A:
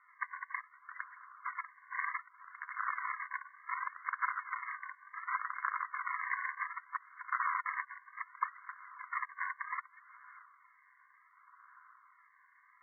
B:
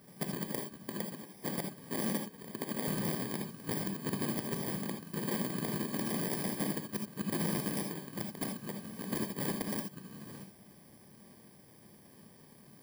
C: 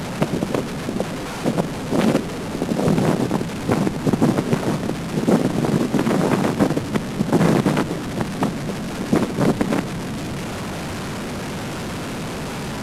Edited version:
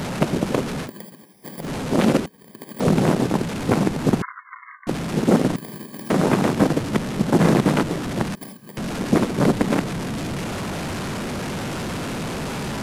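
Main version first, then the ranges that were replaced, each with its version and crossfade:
C
0.86–1.64 from B, crossfade 0.10 s
2.26–2.8 from B
4.22–4.87 from A
5.56–6.1 from B
8.35–8.77 from B

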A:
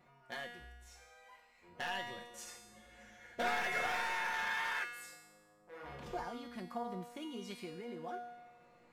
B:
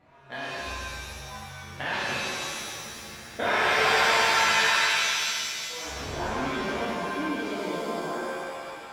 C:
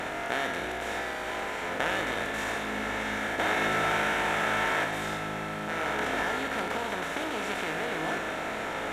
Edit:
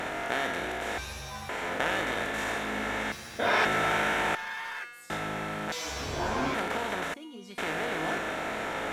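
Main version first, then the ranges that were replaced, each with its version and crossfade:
C
0.98–1.49 from B
3.12–3.65 from B
4.35–5.1 from A
5.72–6.54 from B
7.14–7.58 from A

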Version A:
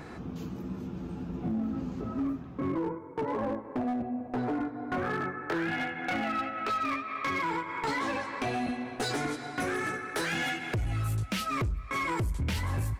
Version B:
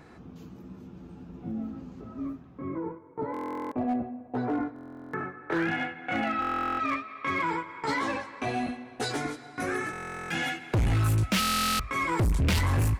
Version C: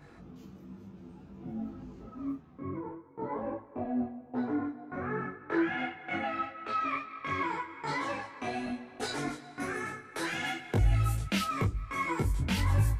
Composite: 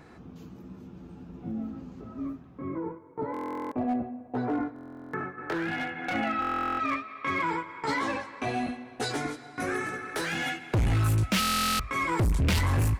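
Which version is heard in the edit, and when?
B
5.38–6.14 from A
9.92–10.46 from A
not used: C

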